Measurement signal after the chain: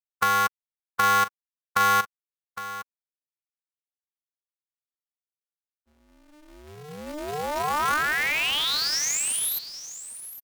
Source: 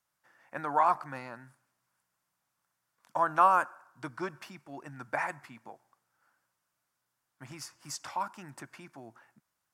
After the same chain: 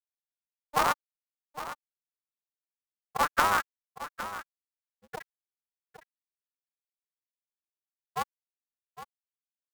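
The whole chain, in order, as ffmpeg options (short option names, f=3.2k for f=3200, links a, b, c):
-af "afftfilt=real='re*gte(hypot(re,im),0.224)':imag='im*gte(hypot(re,im),0.224)':win_size=1024:overlap=0.75,highpass=750,equalizer=f=1.3k:t=o:w=0.44:g=6.5,acompressor=threshold=-25dB:ratio=6,acrusher=bits=3:mode=log:mix=0:aa=0.000001,aecho=1:1:810:0.224,aeval=exprs='val(0)*sgn(sin(2*PI*150*n/s))':c=same,volume=3.5dB"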